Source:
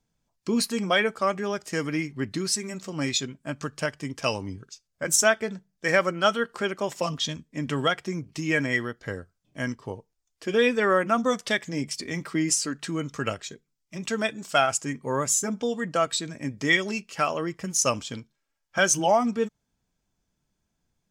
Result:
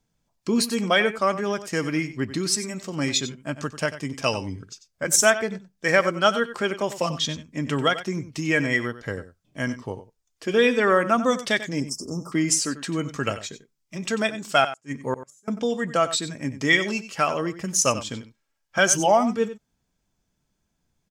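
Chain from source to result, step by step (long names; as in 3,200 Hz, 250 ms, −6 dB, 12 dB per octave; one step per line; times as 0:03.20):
0:11.80–0:12.32: Chebyshev band-stop filter 1,300–5,100 Hz, order 5
0:14.64–0:15.48: gate with flip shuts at −16 dBFS, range −36 dB
single-tap delay 93 ms −13.5 dB
level +2.5 dB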